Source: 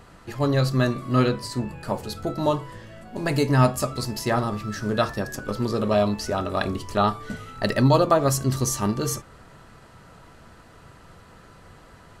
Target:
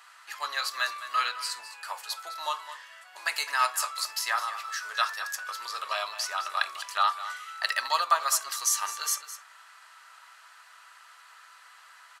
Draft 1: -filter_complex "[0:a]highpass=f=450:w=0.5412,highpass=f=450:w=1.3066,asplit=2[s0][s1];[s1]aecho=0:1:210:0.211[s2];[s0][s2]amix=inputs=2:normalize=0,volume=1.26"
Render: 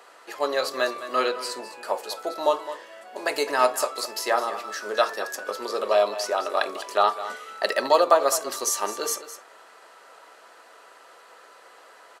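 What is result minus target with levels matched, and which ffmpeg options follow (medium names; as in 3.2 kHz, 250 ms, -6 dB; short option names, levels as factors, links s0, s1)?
500 Hz band +16.5 dB
-filter_complex "[0:a]highpass=f=1100:w=0.5412,highpass=f=1100:w=1.3066,asplit=2[s0][s1];[s1]aecho=0:1:210:0.211[s2];[s0][s2]amix=inputs=2:normalize=0,volume=1.26"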